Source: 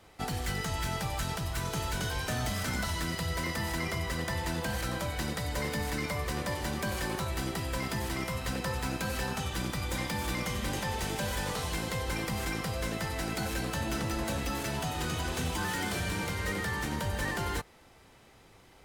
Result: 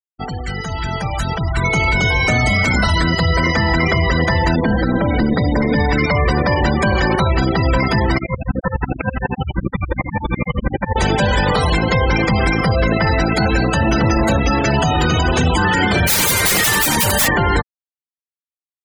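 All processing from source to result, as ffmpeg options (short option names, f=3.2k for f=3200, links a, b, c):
-filter_complex "[0:a]asettb=1/sr,asplit=3[a][b][c];[a]atrim=end=1.644[d];[b]atrim=start=1.64:end=2.73,asetpts=PTS-STARTPTS,afade=t=in:d=0.004:c=qsin,afade=t=out:st=1.086:d=0.004:c=qsin,equalizer=f=1.6k:w=7.9:g=-5.5,bandreject=f=1.7k:w=16,aeval=exprs='val(0)+0.02*sin(2*PI*2200*n/s)':c=same[e];[c]atrim=start=2.726[f];[d][e]acrossfade=d=0.004:c1=hsin:c2=qsin[g];[g][f]acrossfade=d=0.004:c1=qsin:c2=hsin,asettb=1/sr,asplit=3[h][i][j];[h]atrim=end=4.554[k];[i]atrim=start=4.55:end=5.76,asetpts=PTS-STARTPTS,afade=t=in:d=0.004:c=qsin,afade=t=out:st=1.206:d=0.004:c=qsin,equalizer=f=250:t=o:w=1:g=13,tremolo=f=230:d=0.571[l];[j]atrim=start=5.756[m];[k][l]acrossfade=d=0.004:c1=hsin:c2=qsin[n];[n][m]acrossfade=d=0.004:c1=qsin:c2=hsin,asettb=1/sr,asplit=3[o][p][q];[o]atrim=end=8.184[r];[p]atrim=start=8.18:end=10.96,asetpts=PTS-STARTPTS,afade=t=in:d=0.004:c=qsin,afade=t=out:st=2.776:d=0.004:c=qsin,lowpass=3.6k,aeval=exprs='val(0)*pow(10,-21*if(lt(mod(-12*n/s,1),2*abs(-12)/1000),1-mod(-12*n/s,1)/(2*abs(-12)/1000),(mod(-12*n/s,1)-2*abs(-12)/1000)/(1-2*abs(-12)/1000))/20)':c=same[s];[q]atrim=start=10.956[t];[r][s]acrossfade=d=0.004:c1=hsin:c2=qsin[u];[u][t]acrossfade=d=0.004:c1=qsin:c2=hsin,asettb=1/sr,asplit=3[v][w][x];[v]atrim=end=16.074[y];[w]atrim=start=16.07:end=17.28,asetpts=PTS-STARTPTS,afade=t=in:d=0.004:c=qsin,afade=t=out:st=1.206:d=0.004:c=qsin,highpass=f=140:p=1,aemphasis=mode=production:type=75kf,aeval=exprs='(mod(20*val(0)+1,2)-1)/20':c=same[z];[x]atrim=start=17.276[aa];[y][z]acrossfade=d=0.004:c1=hsin:c2=qsin[ab];[ab][aa]acrossfade=d=0.004:c1=qsin:c2=hsin,afftfilt=real='re*gte(hypot(re,im),0.02)':imag='im*gte(hypot(re,im),0.02)':win_size=1024:overlap=0.75,dynaudnorm=f=660:g=5:m=12dB,alimiter=level_in=15dB:limit=-1dB:release=50:level=0:latency=1,volume=-6dB"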